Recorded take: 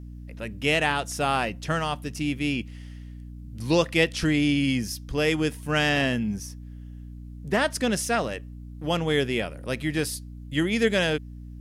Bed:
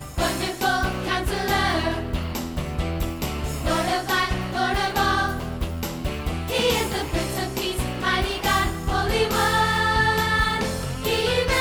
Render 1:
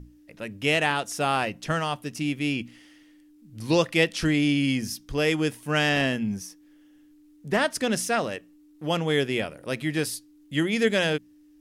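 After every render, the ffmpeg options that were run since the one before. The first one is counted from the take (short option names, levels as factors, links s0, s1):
-af "bandreject=f=60:t=h:w=6,bandreject=f=120:t=h:w=6,bandreject=f=180:t=h:w=6,bandreject=f=240:t=h:w=6"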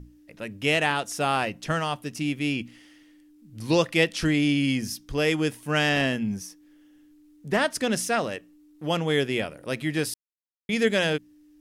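-filter_complex "[0:a]asplit=3[s0][s1][s2];[s0]atrim=end=10.14,asetpts=PTS-STARTPTS,afade=t=out:st=10.136:d=0.004:c=hsin[s3];[s1]atrim=start=10.14:end=10.69,asetpts=PTS-STARTPTS,volume=0[s4];[s2]atrim=start=10.69,asetpts=PTS-STARTPTS,afade=t=in:d=0.004:c=hsin[s5];[s3][s4][s5]concat=n=3:v=0:a=1"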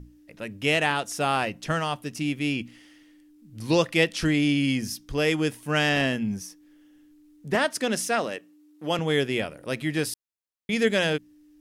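-filter_complex "[0:a]asettb=1/sr,asplit=3[s0][s1][s2];[s0]atrim=end=7.554[s3];[s1]atrim=start=7.55:end=8.99,asetpts=PTS-STARTPTS,afade=t=in:d=0.004:c=qsin,afade=t=out:st=1.436:d=0.004:c=qsin,highpass=190[s4];[s2]atrim=start=8.986[s5];[s3][s4]acrossfade=d=0.004:c1=hsin:c2=qsin[s6];[s6][s5]acrossfade=d=0.004:c1=qsin:c2=hsin"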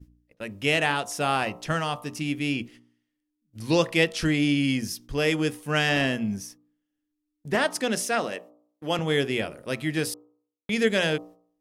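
-af "agate=range=0.0708:threshold=0.00562:ratio=16:detection=peak,bandreject=f=59.61:t=h:w=4,bandreject=f=119.22:t=h:w=4,bandreject=f=178.83:t=h:w=4,bandreject=f=238.44:t=h:w=4,bandreject=f=298.05:t=h:w=4,bandreject=f=357.66:t=h:w=4,bandreject=f=417.27:t=h:w=4,bandreject=f=476.88:t=h:w=4,bandreject=f=536.49:t=h:w=4,bandreject=f=596.1:t=h:w=4,bandreject=f=655.71:t=h:w=4,bandreject=f=715.32:t=h:w=4,bandreject=f=774.93:t=h:w=4,bandreject=f=834.54:t=h:w=4,bandreject=f=894.15:t=h:w=4,bandreject=f=953.76:t=h:w=4,bandreject=f=1013.37:t=h:w=4,bandreject=f=1072.98:t=h:w=4,bandreject=f=1132.59:t=h:w=4,bandreject=f=1192.2:t=h:w=4,bandreject=f=1251.81:t=h:w=4,bandreject=f=1311.42:t=h:w=4"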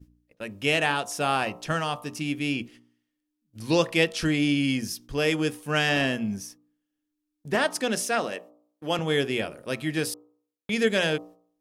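-af "lowshelf=f=120:g=-4,bandreject=f=2000:w=19"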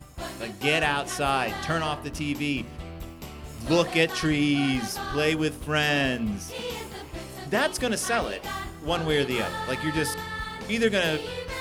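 -filter_complex "[1:a]volume=0.237[s0];[0:a][s0]amix=inputs=2:normalize=0"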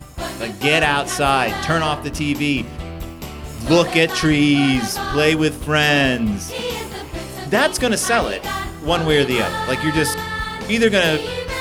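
-af "volume=2.66,alimiter=limit=0.708:level=0:latency=1"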